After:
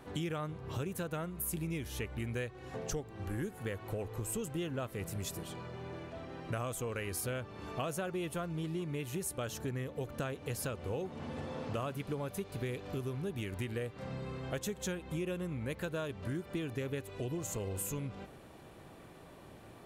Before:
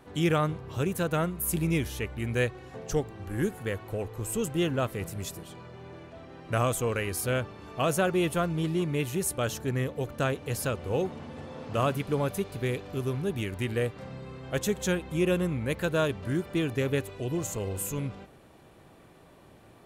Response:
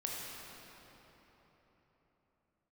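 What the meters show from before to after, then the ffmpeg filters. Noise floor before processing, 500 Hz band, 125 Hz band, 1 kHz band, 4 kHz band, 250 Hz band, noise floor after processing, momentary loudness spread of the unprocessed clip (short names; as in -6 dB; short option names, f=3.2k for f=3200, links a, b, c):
-55 dBFS, -9.5 dB, -8.0 dB, -10.0 dB, -8.5 dB, -9.0 dB, -54 dBFS, 12 LU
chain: -af "acompressor=threshold=-36dB:ratio=6,volume=1dB"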